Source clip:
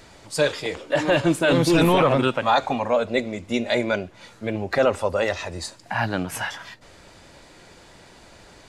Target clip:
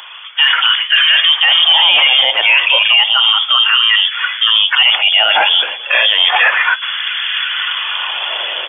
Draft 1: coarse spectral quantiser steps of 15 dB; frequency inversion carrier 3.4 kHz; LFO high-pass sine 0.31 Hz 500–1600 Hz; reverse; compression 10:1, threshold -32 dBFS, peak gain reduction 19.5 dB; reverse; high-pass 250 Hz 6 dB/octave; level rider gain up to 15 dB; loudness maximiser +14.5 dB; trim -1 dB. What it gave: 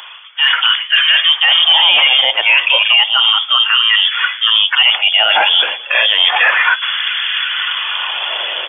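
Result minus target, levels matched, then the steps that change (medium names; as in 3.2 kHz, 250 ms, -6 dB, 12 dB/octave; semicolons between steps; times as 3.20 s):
compression: peak gain reduction +8 dB
change: compression 10:1, threshold -23 dBFS, peak gain reduction 11 dB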